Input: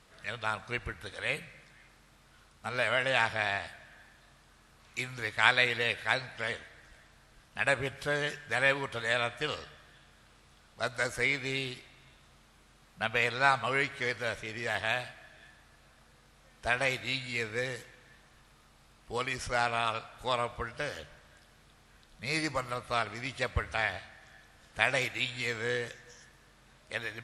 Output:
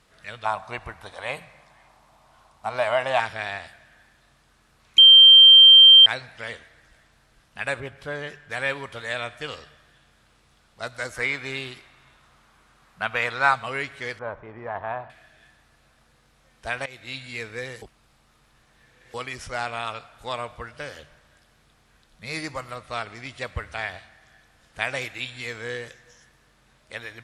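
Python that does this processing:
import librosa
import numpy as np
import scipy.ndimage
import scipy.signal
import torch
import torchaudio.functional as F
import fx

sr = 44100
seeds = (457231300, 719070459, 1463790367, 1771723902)

y = fx.band_shelf(x, sr, hz=830.0, db=12.0, octaves=1.1, at=(0.45, 3.2))
y = fx.high_shelf(y, sr, hz=3500.0, db=-10.0, at=(7.8, 8.5))
y = fx.peak_eq(y, sr, hz=1200.0, db=7.5, octaves=1.5, at=(11.16, 13.54))
y = fx.lowpass_res(y, sr, hz=990.0, q=2.9, at=(14.19, 15.1))
y = fx.lowpass(y, sr, hz=10000.0, slope=24, at=(22.76, 23.43))
y = fx.edit(y, sr, fx.bleep(start_s=4.98, length_s=1.08, hz=3150.0, db=-6.5),
    fx.fade_in_from(start_s=16.86, length_s=0.46, curve='qsin', floor_db=-19.5),
    fx.reverse_span(start_s=17.82, length_s=1.32), tone=tone)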